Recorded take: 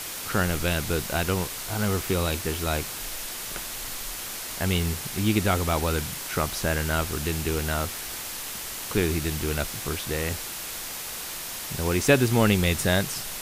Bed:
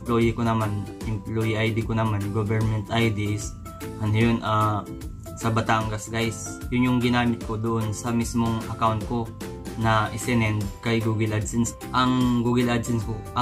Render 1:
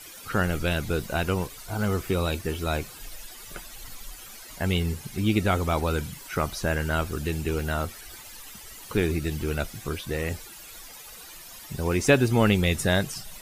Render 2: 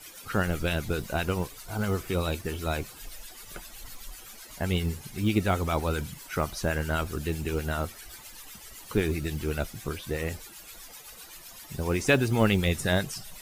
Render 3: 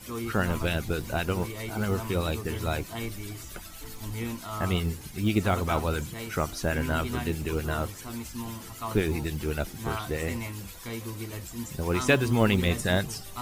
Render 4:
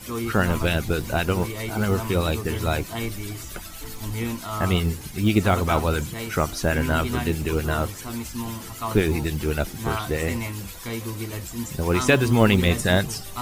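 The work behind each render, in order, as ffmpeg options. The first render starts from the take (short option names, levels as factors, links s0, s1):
-af "afftdn=nr=14:nf=-35"
-filter_complex "[0:a]acrossover=split=1100[s0][s1];[s0]aeval=exprs='val(0)*(1-0.5/2+0.5/2*cos(2*PI*7.8*n/s))':c=same[s2];[s1]aeval=exprs='val(0)*(1-0.5/2-0.5/2*cos(2*PI*7.8*n/s))':c=same[s3];[s2][s3]amix=inputs=2:normalize=0,acrusher=bits=8:mode=log:mix=0:aa=0.000001"
-filter_complex "[1:a]volume=0.211[s0];[0:a][s0]amix=inputs=2:normalize=0"
-af "volume=1.88,alimiter=limit=0.794:level=0:latency=1"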